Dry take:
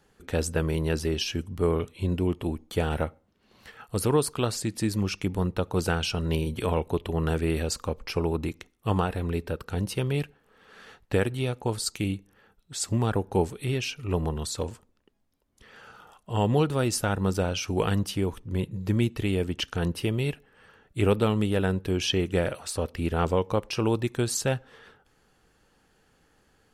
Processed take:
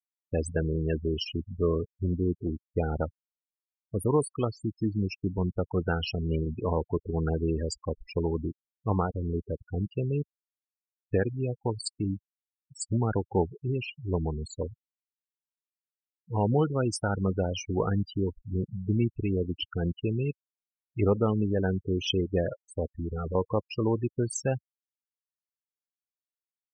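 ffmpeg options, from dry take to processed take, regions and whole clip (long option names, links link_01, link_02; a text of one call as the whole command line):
ffmpeg -i in.wav -filter_complex "[0:a]asettb=1/sr,asplit=3[link_01][link_02][link_03];[link_01]atrim=end=22.874[link_04];[link_02]atrim=start=22.87:end=23.35,asetpts=PTS-STARTPTS,afade=type=in:duration=0.004:curve=qsin,afade=type=out:start_time=0.476:duration=0.004:curve=qsin,asoftclip=type=hard:threshold=-27dB,aemphasis=mode=production:type=50fm[link_05];[link_03]atrim=start=23.346[link_06];[link_04][link_05]acrossfade=duration=0.004:curve1=hsin:curve2=qsin[link_07];[link_07][link_06]acrossfade=duration=0.004:curve1=qsin:curve2=hsin,afftfilt=real='re*gte(hypot(re,im),0.0708)':imag='im*gte(hypot(re,im),0.0708)':win_size=1024:overlap=0.75,afftdn=noise_reduction=14:noise_floor=-36,volume=-1.5dB" out.wav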